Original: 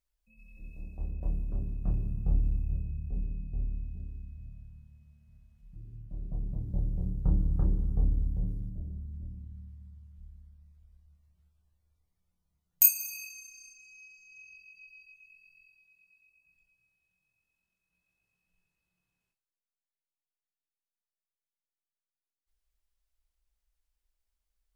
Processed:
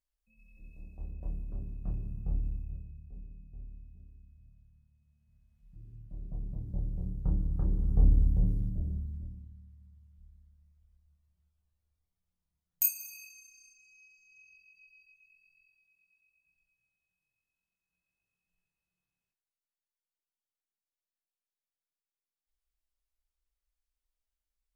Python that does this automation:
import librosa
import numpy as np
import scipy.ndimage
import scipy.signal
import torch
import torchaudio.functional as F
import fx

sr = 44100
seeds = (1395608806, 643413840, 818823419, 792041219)

y = fx.gain(x, sr, db=fx.line((2.46, -5.5), (3.06, -13.0), (4.96, -13.0), (5.84, -3.5), (7.63, -3.5), (8.08, 5.0), (8.95, 5.0), (9.6, -7.0)))